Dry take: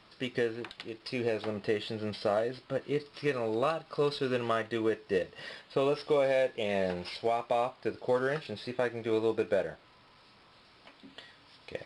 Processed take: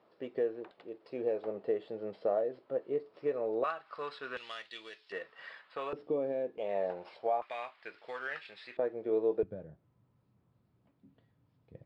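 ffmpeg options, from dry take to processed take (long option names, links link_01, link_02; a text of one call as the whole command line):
ffmpeg -i in.wav -af "asetnsamples=nb_out_samples=441:pad=0,asendcmd='3.64 bandpass f 1400;4.37 bandpass f 3800;5.12 bandpass f 1400;5.93 bandpass f 290;6.58 bandpass f 700;7.42 bandpass f 2000;8.77 bandpass f 460;9.43 bandpass f 120',bandpass=frequency=510:width_type=q:width=1.6:csg=0" out.wav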